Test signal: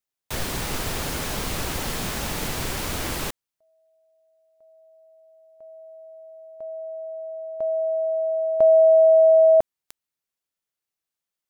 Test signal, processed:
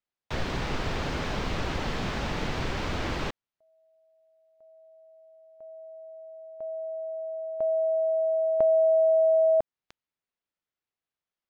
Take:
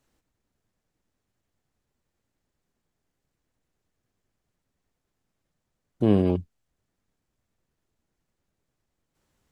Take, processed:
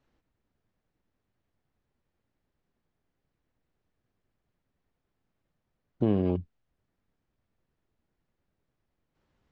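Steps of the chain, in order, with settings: compression 2.5:1, threshold -22 dBFS; distance through air 180 m

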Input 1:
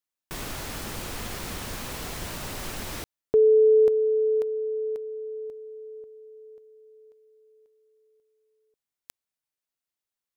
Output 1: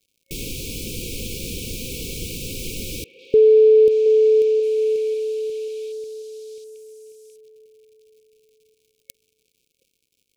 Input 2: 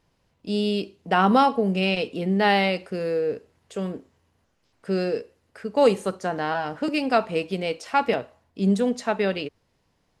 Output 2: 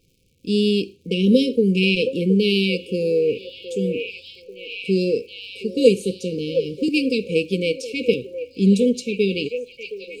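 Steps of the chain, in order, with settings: repeats whose band climbs or falls 720 ms, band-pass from 720 Hz, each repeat 0.7 oct, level -3 dB; crackle 170 per s -54 dBFS; FFT band-reject 540–2200 Hz; trim +5.5 dB

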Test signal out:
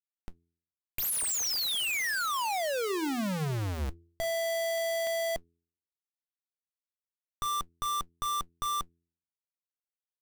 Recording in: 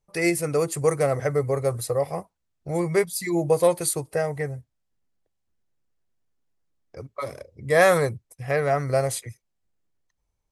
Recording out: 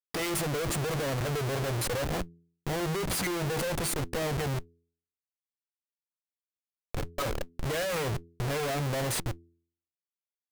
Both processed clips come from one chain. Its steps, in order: Schmitt trigger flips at -35 dBFS; short-mantissa float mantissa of 2-bit; de-hum 84.46 Hz, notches 5; trim -4 dB

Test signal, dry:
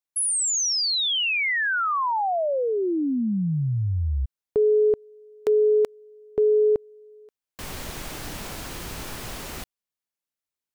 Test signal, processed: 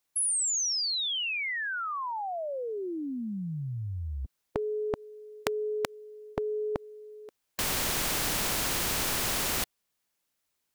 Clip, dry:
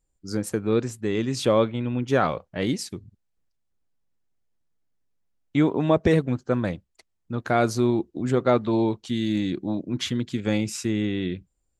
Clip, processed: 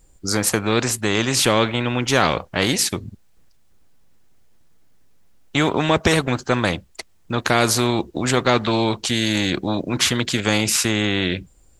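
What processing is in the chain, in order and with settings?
spectrum-flattening compressor 2:1; trim +5 dB

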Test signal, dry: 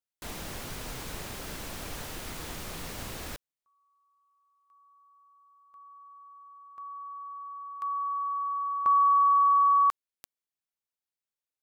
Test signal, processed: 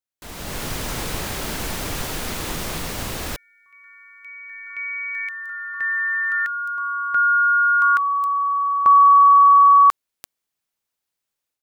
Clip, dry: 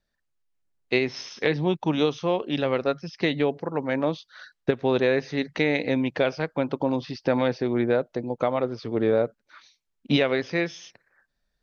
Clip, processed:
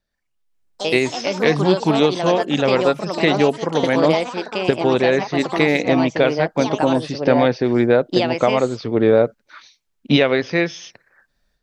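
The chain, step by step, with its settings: ever faster or slower copies 112 ms, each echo +4 st, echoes 3, each echo -6 dB; level rider gain up to 10.5 dB

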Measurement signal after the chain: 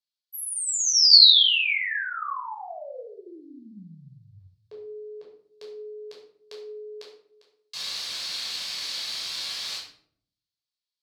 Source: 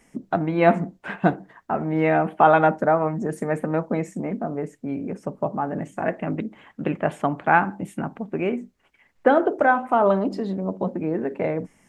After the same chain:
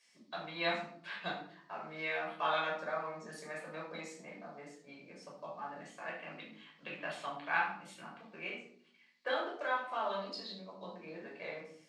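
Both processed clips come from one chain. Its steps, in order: band-pass filter 4.3 kHz, Q 3.9; simulated room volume 860 m³, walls furnished, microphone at 5.5 m; trim +2 dB

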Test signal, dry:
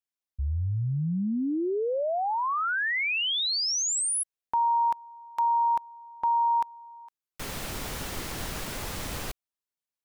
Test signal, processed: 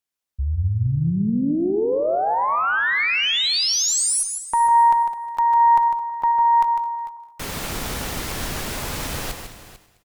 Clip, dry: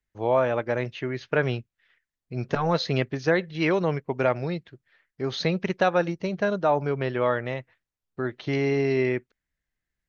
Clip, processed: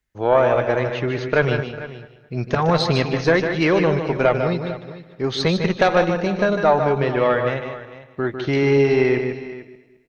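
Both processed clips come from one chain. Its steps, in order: backward echo that repeats 107 ms, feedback 56%, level -13 dB; Chebyshev shaper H 2 -12 dB, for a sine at -8.5 dBFS; multi-tap echo 151/447 ms -7.5/-15.5 dB; trim +6 dB

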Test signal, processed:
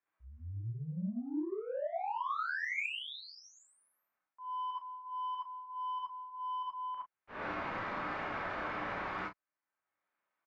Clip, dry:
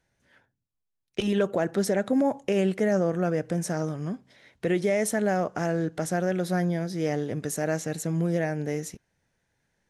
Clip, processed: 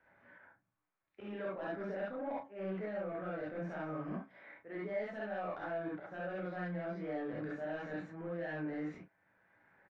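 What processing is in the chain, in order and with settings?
low-pass 1.7 kHz 24 dB/octave; tilt EQ +4 dB/octave; reverse; compression 20:1, threshold -34 dBFS; reverse; slow attack 157 ms; saturation -31 dBFS; doubling 33 ms -9 dB; gated-style reverb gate 90 ms rising, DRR -6 dB; three bands compressed up and down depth 40%; trim -6.5 dB

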